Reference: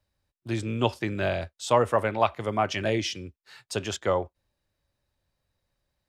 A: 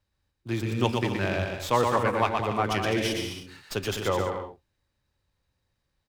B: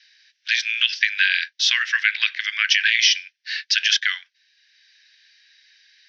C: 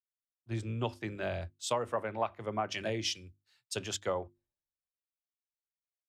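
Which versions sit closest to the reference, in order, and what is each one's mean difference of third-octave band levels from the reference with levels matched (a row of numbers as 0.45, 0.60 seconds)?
C, A, B; 3.0, 8.0, 20.0 decibels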